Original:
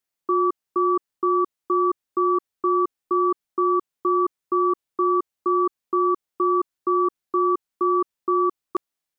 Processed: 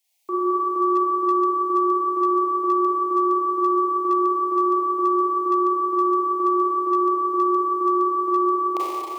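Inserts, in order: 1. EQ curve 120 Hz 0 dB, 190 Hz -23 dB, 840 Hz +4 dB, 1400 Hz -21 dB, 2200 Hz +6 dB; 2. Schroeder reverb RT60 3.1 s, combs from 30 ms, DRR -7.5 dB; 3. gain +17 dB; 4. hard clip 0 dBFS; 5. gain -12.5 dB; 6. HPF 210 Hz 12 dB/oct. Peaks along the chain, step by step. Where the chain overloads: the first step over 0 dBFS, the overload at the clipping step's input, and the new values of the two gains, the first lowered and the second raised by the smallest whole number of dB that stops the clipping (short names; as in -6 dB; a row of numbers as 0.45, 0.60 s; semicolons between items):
-15.0, -13.0, +4.0, 0.0, -12.5, -11.5 dBFS; step 3, 4.0 dB; step 3 +13 dB, step 5 -8.5 dB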